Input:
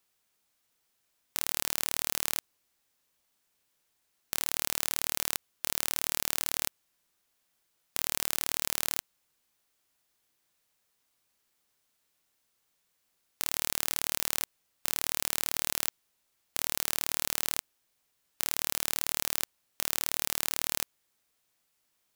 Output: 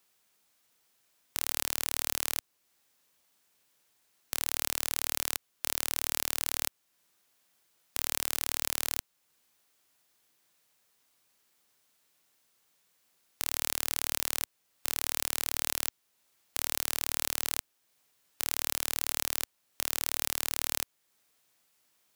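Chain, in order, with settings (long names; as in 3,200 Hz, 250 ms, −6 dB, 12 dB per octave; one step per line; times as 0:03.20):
in parallel at −1 dB: downward compressor, threshold −45 dBFS, peak gain reduction 20 dB
on the sum: high-pass filter 99 Hz 6 dB per octave
level −1 dB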